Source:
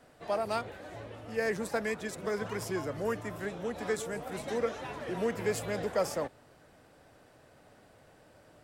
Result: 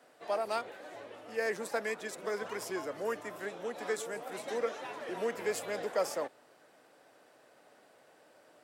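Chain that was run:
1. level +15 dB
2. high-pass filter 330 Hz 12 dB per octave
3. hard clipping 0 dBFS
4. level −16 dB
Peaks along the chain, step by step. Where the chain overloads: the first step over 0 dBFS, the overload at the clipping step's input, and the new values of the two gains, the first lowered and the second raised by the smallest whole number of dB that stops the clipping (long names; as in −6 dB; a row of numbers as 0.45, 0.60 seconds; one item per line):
−3.5, −4.0, −4.0, −20.0 dBFS
no step passes full scale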